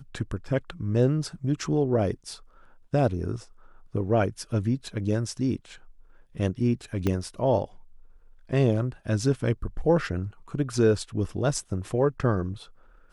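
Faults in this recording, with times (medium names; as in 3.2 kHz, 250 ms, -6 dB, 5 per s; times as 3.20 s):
7.07 s: pop -13 dBFS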